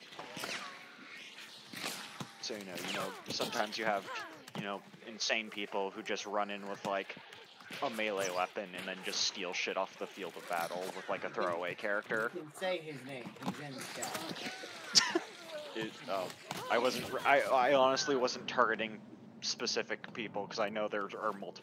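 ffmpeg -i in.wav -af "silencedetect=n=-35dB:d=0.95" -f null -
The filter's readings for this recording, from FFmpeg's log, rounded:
silence_start: 0.66
silence_end: 1.73 | silence_duration: 1.07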